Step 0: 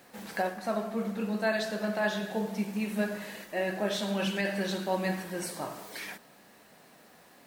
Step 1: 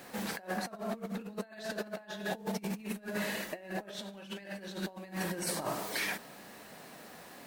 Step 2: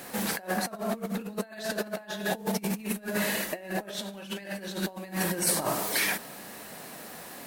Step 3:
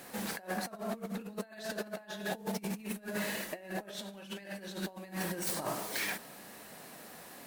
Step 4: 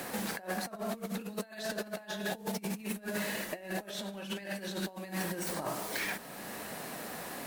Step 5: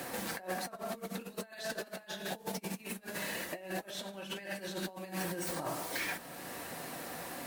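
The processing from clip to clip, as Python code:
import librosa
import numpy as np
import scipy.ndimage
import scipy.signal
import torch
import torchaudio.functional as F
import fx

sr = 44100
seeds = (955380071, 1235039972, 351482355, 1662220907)

y1 = fx.over_compress(x, sr, threshold_db=-38.0, ratio=-0.5)
y2 = fx.peak_eq(y1, sr, hz=12000.0, db=7.5, octaves=1.1)
y2 = F.gain(torch.from_numpy(y2), 6.0).numpy()
y3 = fx.self_delay(y2, sr, depth_ms=0.075)
y3 = F.gain(torch.from_numpy(y3), -6.5).numpy()
y4 = fx.band_squash(y3, sr, depth_pct=70)
y4 = F.gain(torch.from_numpy(y4), 1.0).numpy()
y5 = fx.notch_comb(y4, sr, f0_hz=210.0)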